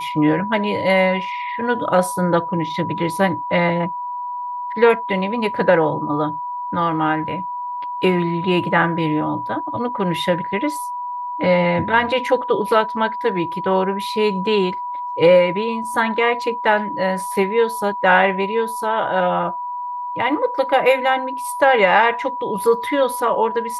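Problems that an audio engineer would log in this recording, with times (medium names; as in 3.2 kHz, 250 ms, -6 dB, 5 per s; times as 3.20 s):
whine 980 Hz -24 dBFS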